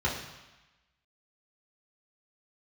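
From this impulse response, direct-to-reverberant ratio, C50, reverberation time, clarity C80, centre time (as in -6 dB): -5.0 dB, 5.0 dB, 1.1 s, 7.5 dB, 41 ms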